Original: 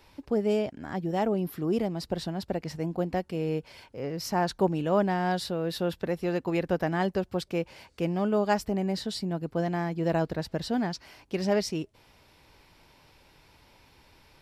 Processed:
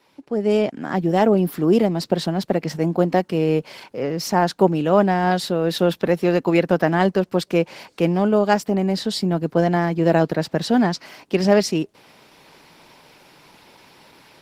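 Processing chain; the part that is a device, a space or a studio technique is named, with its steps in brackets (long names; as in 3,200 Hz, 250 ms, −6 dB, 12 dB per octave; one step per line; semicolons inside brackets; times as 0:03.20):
0:09.76–0:11.40: high-pass filter 51 Hz 12 dB per octave
video call (high-pass filter 150 Hz 24 dB per octave; automatic gain control gain up to 12 dB; Opus 16 kbit/s 48,000 Hz)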